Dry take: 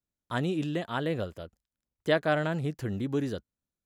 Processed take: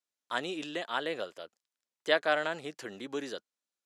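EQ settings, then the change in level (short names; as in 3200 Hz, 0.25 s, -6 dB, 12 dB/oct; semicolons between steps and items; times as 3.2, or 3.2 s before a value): BPF 370–7300 Hz; tilt +2 dB/oct; 0.0 dB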